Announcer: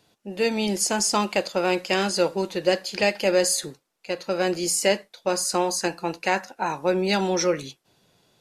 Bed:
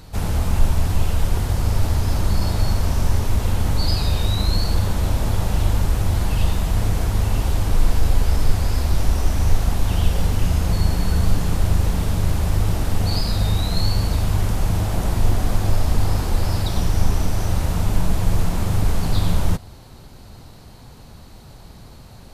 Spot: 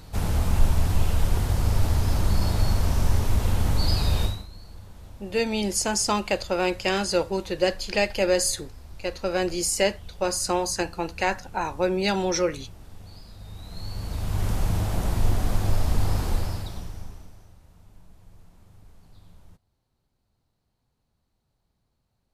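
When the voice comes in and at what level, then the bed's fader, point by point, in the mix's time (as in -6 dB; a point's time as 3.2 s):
4.95 s, -1.5 dB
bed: 4.24 s -3 dB
4.48 s -24.5 dB
13.35 s -24.5 dB
14.49 s -4.5 dB
16.32 s -4.5 dB
17.58 s -33 dB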